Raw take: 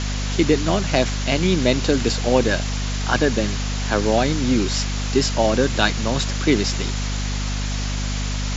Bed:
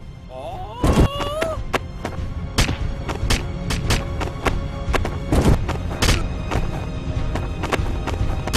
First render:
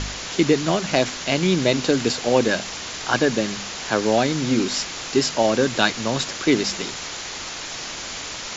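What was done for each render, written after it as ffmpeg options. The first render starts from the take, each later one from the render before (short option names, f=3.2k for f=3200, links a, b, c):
-af "bandreject=f=50:t=h:w=4,bandreject=f=100:t=h:w=4,bandreject=f=150:t=h:w=4,bandreject=f=200:t=h:w=4,bandreject=f=250:t=h:w=4"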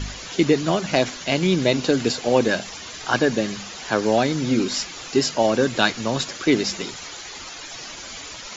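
-af "afftdn=nr=11:nf=-33"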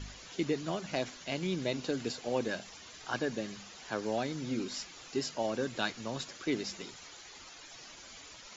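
-af "volume=-14.5dB"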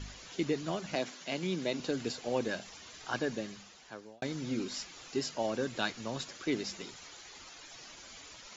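-filter_complex "[0:a]asettb=1/sr,asplit=3[a][b][c];[a]atrim=end=0.954[d];[b]atrim=start=0.95:end=1.8,asetpts=PTS-STARTPTS,afade=t=in:d=0.004:c=qsin,afade=t=out:st=0.846:d=0.004:c=qsin,highpass=f=150:w=0.5412,highpass=f=150:w=1.3066[e];[c]atrim=start=1.796[f];[d][e]acrossfade=d=0.004:c1=hsin:c2=qsin[g];[g][f]acrossfade=d=0.004:c1=qsin:c2=hsin,asplit=2[h][i];[h]atrim=end=4.22,asetpts=PTS-STARTPTS,afade=t=out:st=3.3:d=0.92[j];[i]atrim=start=4.22,asetpts=PTS-STARTPTS,afade=t=in:d=0.004:c=hsin[k];[j][k]concat=n=2:v=0:a=1"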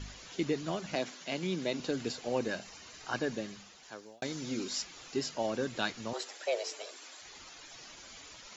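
-filter_complex "[0:a]asettb=1/sr,asplit=3[a][b][c];[a]atrim=end=2.284[d];[b]atrim=start=2.28:end=3.23,asetpts=PTS-STARTPTS,afade=t=in:d=0.004:c=qsin,afade=t=out:st=0.946:d=0.004:c=qsin,bandreject=f=3.4k:w=12[e];[c]atrim=start=3.226[f];[d][e]acrossfade=d=0.004:c1=hsin:c2=qsin[g];[g][f]acrossfade=d=0.004:c1=qsin:c2=hsin,asettb=1/sr,asplit=3[h][i][j];[h]atrim=end=3.834[k];[i]atrim=start=3.83:end=4.82,asetpts=PTS-STARTPTS,afade=t=in:d=0.004:c=qsin,afade=t=out:st=0.986:d=0.004:c=qsin,bass=f=250:g=-4,treble=f=4k:g=6[l];[j]atrim=start=4.816[m];[k][l]acrossfade=d=0.004:c1=hsin:c2=qsin[n];[n][m]acrossfade=d=0.004:c1=qsin:c2=hsin,asettb=1/sr,asplit=3[o][p][q];[o]atrim=end=6.134[r];[p]atrim=start=6.13:end=7.22,asetpts=PTS-STARTPTS,afade=t=in:d=0.004:c=qsin,afade=t=out:st=1.086:d=0.004:c=qsin,afreqshift=240[s];[q]atrim=start=7.216[t];[r][s]acrossfade=d=0.004:c1=hsin:c2=qsin[u];[u][t]acrossfade=d=0.004:c1=qsin:c2=hsin"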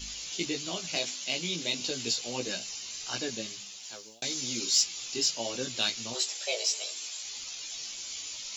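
-af "flanger=delay=15.5:depth=2.4:speed=1.6,aexciter=amount=2.9:drive=9:freq=2.4k"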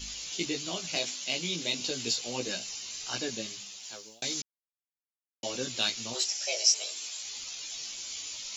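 -filter_complex "[0:a]asplit=3[a][b][c];[a]afade=t=out:st=6.24:d=0.02[d];[b]highpass=120,equalizer=f=440:t=q:w=4:g=-9,equalizer=f=1.1k:t=q:w=4:g=-6,equalizer=f=3.7k:t=q:w=4:g=-6,equalizer=f=5.6k:t=q:w=4:g=9,lowpass=f=9.2k:w=0.5412,lowpass=f=9.2k:w=1.3066,afade=t=in:st=6.24:d=0.02,afade=t=out:st=6.74:d=0.02[e];[c]afade=t=in:st=6.74:d=0.02[f];[d][e][f]amix=inputs=3:normalize=0,asplit=3[g][h][i];[g]atrim=end=4.42,asetpts=PTS-STARTPTS,afade=t=out:st=4.416:d=0.004:c=hsin[j];[h]atrim=start=4.42:end=5.43,asetpts=PTS-STARTPTS,volume=0[k];[i]atrim=start=5.43,asetpts=PTS-STARTPTS,afade=t=in:d=0.004:c=hsin[l];[j][k][l]concat=n=3:v=0:a=1"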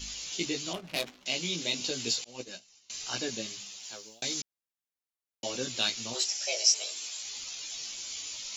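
-filter_complex "[0:a]asettb=1/sr,asplit=3[a][b][c];[a]atrim=end=0.734[d];[b]atrim=start=0.73:end=1.26,asetpts=PTS-STARTPTS,afade=t=in:d=0.004:c=qsin,afade=t=out:st=0.526:d=0.004:c=qsin,adynamicsmooth=sensitivity=6.5:basefreq=520[e];[c]atrim=start=1.256[f];[d][e]acrossfade=d=0.004:c1=hsin:c2=qsin[g];[g][f]acrossfade=d=0.004:c1=qsin:c2=hsin,asettb=1/sr,asplit=3[h][i][j];[h]atrim=end=2.244[k];[i]atrim=start=2.24:end=2.9,asetpts=PTS-STARTPTS,afade=t=in:d=0.004:c=qsin,afade=t=out:st=0.656:d=0.004:c=qsin,agate=range=-33dB:threshold=-27dB:ratio=3:release=100:detection=peak[l];[j]atrim=start=2.896[m];[k][l]acrossfade=d=0.004:c1=hsin:c2=qsin[n];[n][m]acrossfade=d=0.004:c1=qsin:c2=hsin"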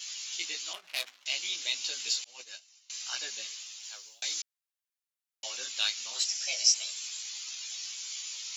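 -af "highpass=1.2k"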